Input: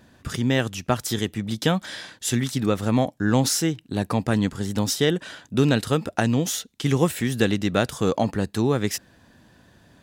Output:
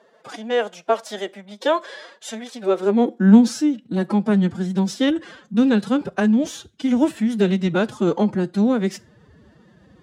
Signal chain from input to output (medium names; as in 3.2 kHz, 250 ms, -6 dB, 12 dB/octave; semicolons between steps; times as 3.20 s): formant-preserving pitch shift +10.5 st; tilt shelf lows +3.5 dB, about 1.1 kHz; high-pass sweep 580 Hz -> 67 Hz, 2.57–4.10 s; distance through air 51 m; on a send: reverberation RT60 0.35 s, pre-delay 5 ms, DRR 17.5 dB